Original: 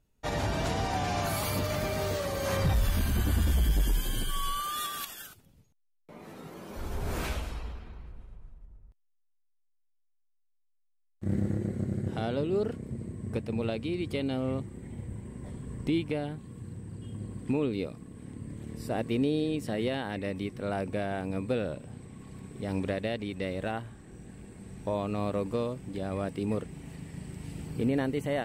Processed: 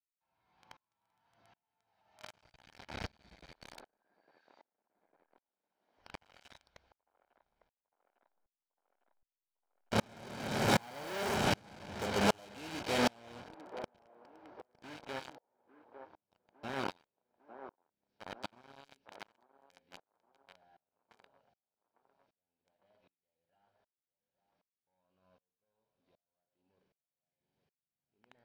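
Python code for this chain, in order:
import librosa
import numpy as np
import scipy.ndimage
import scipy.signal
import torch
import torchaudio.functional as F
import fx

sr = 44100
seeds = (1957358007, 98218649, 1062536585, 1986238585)

p1 = fx.delta_mod(x, sr, bps=32000, step_db=-45.5)
p2 = fx.doppler_pass(p1, sr, speed_mps=40, closest_m=15.0, pass_at_s=11.03)
p3 = scipy.signal.sosfilt(scipy.signal.butter(4, 4200.0, 'lowpass', fs=sr, output='sos'), p2)
p4 = fx.rev_schroeder(p3, sr, rt60_s=0.74, comb_ms=33, drr_db=7.5)
p5 = fx.fuzz(p4, sr, gain_db=51.0, gate_db=-50.0)
p6 = p4 + F.gain(torch.from_numpy(p5), -4.0).numpy()
p7 = p6 + 0.39 * np.pad(p6, (int(1.3 * sr / 1000.0), 0))[:len(p6)]
p8 = fx.formant_shift(p7, sr, semitones=3)
p9 = fx.low_shelf(p8, sr, hz=310.0, db=-11.0)
p10 = p9 + fx.echo_wet_bandpass(p9, sr, ms=853, feedback_pct=44, hz=620.0, wet_db=-12.5, dry=0)
p11 = fx.spec_repair(p10, sr, seeds[0], start_s=15.38, length_s=0.49, low_hz=460.0, high_hz=1000.0, source='after')
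p12 = fx.low_shelf(p11, sr, hz=110.0, db=-8.0)
y = fx.tremolo_decay(p12, sr, direction='swelling', hz=1.3, depth_db=35)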